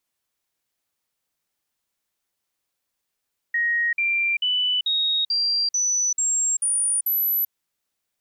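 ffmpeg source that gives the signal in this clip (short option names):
-f lavfi -i "aevalsrc='0.112*clip(min(mod(t,0.44),0.39-mod(t,0.44))/0.005,0,1)*sin(2*PI*1880*pow(2,floor(t/0.44)/3)*mod(t,0.44))':d=3.96:s=44100"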